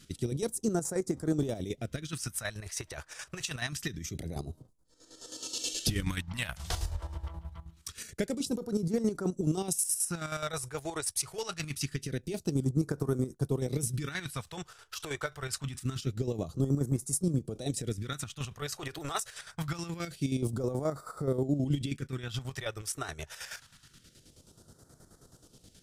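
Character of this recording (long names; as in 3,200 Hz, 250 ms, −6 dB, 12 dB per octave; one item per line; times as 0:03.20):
chopped level 9.4 Hz, depth 60%, duty 45%
phaser sweep stages 2, 0.25 Hz, lowest notch 210–2,600 Hz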